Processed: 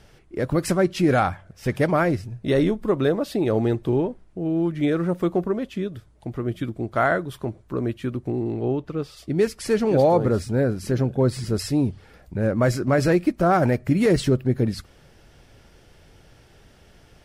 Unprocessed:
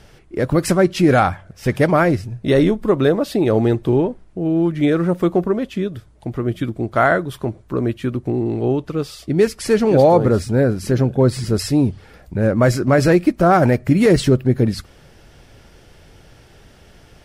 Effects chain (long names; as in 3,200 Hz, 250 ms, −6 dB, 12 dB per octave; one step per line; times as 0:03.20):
0:08.51–0:09.16: high-shelf EQ 6,700 Hz → 4,100 Hz −9 dB
level −5.5 dB